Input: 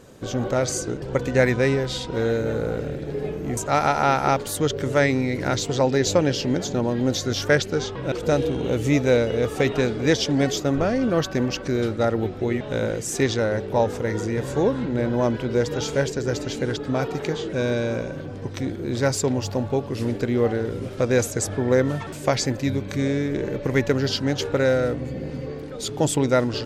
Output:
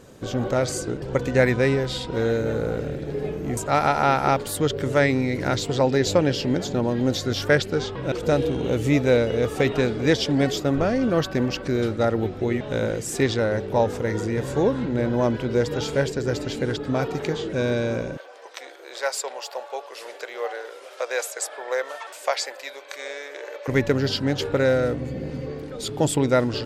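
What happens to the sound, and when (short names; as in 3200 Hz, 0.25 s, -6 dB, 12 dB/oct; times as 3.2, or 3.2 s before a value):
18.17–23.68 inverse Chebyshev high-pass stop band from 220 Hz, stop band 50 dB
whole clip: dynamic EQ 6200 Hz, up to -7 dB, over -48 dBFS, Q 4.6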